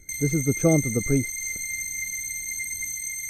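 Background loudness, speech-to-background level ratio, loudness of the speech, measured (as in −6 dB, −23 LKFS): −28.5 LKFS, 4.5 dB, −24.0 LKFS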